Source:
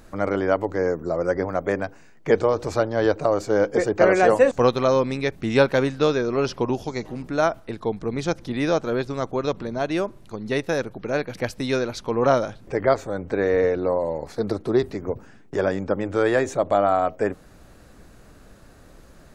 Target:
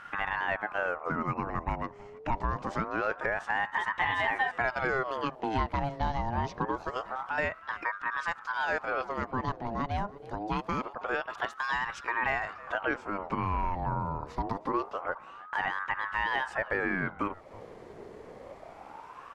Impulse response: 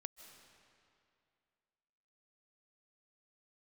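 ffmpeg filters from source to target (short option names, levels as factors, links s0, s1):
-filter_complex "[0:a]aemphasis=mode=reproduction:type=75fm,asplit=2[s0][s1];[s1]alimiter=limit=0.237:level=0:latency=1,volume=0.891[s2];[s0][s2]amix=inputs=2:normalize=0,acompressor=threshold=0.0316:ratio=2,aecho=1:1:322:0.0944,aeval=exprs='val(0)*sin(2*PI*910*n/s+910*0.55/0.25*sin(2*PI*0.25*n/s))':c=same,volume=0.75"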